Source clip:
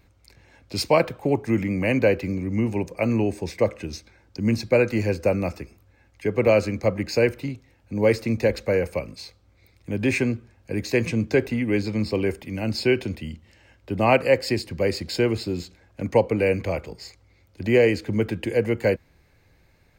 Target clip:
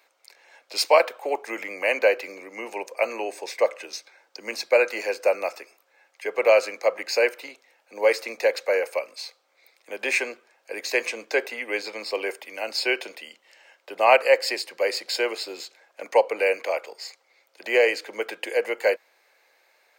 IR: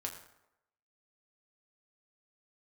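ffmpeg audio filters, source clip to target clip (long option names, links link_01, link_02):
-af "highpass=frequency=530:width=0.5412,highpass=frequency=530:width=1.3066,volume=3.5dB"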